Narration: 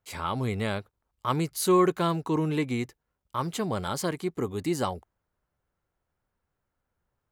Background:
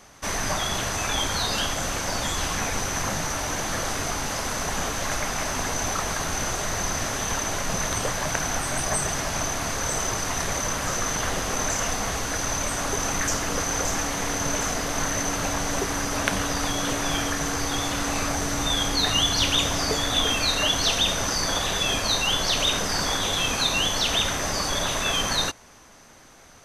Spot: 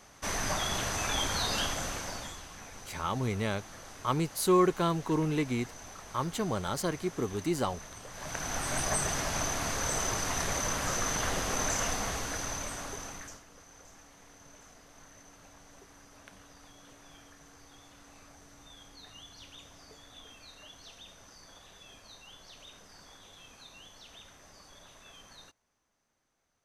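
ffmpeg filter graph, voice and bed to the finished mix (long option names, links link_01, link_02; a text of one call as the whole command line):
ffmpeg -i stem1.wav -i stem2.wav -filter_complex "[0:a]adelay=2800,volume=-2.5dB[link_01];[1:a]volume=10dB,afade=type=out:start_time=1.63:duration=0.8:silence=0.177828,afade=type=in:start_time=8.09:duration=0.67:silence=0.16788,afade=type=out:start_time=11.81:duration=1.63:silence=0.0630957[link_02];[link_01][link_02]amix=inputs=2:normalize=0" out.wav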